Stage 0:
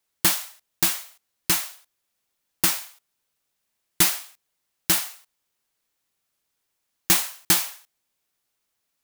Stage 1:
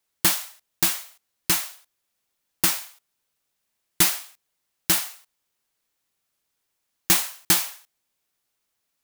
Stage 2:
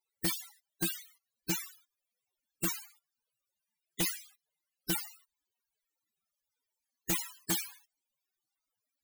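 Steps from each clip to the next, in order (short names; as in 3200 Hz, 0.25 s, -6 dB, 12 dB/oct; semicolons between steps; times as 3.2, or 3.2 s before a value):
nothing audible
loudest bins only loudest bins 32; wavefolder -23 dBFS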